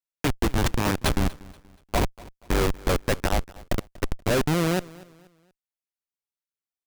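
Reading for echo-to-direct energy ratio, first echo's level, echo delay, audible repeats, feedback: −21.0 dB, −21.5 dB, 239 ms, 2, 37%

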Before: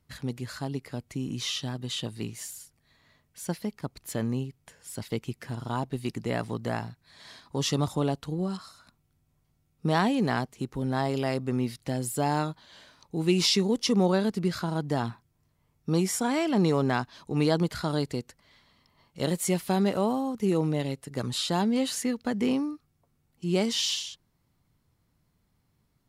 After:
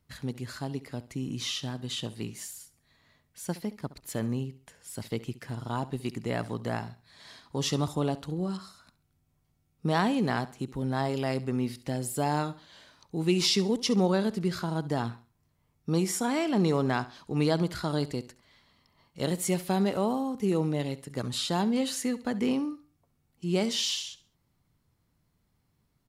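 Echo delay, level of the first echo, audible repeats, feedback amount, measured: 68 ms, −17.0 dB, 2, 34%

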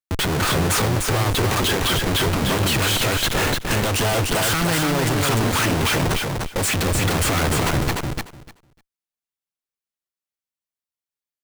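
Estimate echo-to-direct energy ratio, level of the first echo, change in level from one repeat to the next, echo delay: −3.5 dB, −3.5 dB, −16.5 dB, 299 ms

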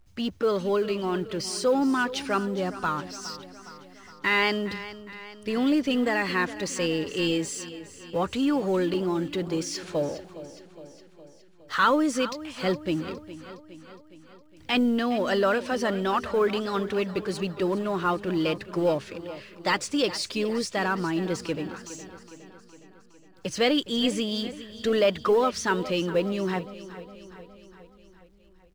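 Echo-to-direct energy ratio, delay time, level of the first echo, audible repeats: −13.0 dB, 413 ms, −15.0 dB, 5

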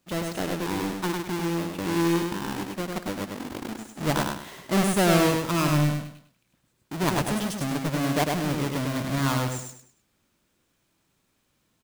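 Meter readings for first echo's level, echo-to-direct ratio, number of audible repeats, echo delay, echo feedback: −3.5 dB, −3.0 dB, 4, 101 ms, 32%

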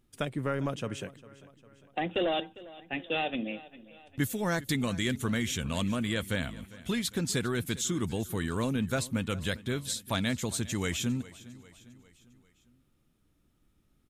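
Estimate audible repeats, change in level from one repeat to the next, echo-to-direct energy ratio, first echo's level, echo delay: 3, −5.5 dB, −17.5 dB, −19.0 dB, 402 ms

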